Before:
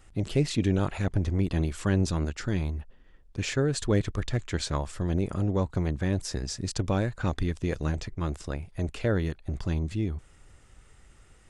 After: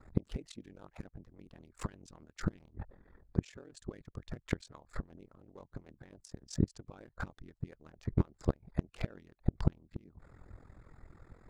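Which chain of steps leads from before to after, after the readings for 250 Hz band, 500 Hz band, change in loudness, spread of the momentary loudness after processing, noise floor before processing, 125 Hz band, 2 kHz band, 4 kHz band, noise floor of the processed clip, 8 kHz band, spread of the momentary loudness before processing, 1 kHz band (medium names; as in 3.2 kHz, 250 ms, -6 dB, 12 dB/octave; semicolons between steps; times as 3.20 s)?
-11.0 dB, -14.5 dB, -10.5 dB, 22 LU, -56 dBFS, -11.0 dB, -14.0 dB, -17.5 dB, -74 dBFS, -16.5 dB, 7 LU, -13.0 dB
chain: local Wiener filter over 15 samples; inverted gate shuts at -22 dBFS, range -28 dB; harmonic-percussive split harmonic -17 dB; ring modulator 21 Hz; trim +10.5 dB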